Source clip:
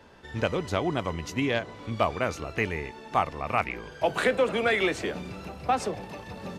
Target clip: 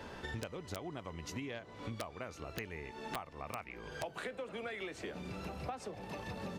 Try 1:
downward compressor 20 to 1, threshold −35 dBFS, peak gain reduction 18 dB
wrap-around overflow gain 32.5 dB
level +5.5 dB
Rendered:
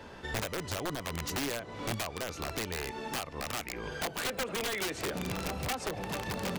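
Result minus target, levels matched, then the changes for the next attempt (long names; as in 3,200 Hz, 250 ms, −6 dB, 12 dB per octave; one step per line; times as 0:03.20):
downward compressor: peak gain reduction −9 dB
change: downward compressor 20 to 1, threshold −44.5 dBFS, peak gain reduction 27 dB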